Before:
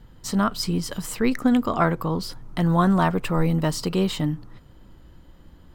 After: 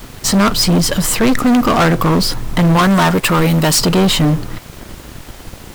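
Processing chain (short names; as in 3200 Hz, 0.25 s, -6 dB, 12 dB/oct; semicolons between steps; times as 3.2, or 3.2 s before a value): 2.76–3.79 tilt +2 dB/oct; sample leveller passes 5; added noise pink -37 dBFS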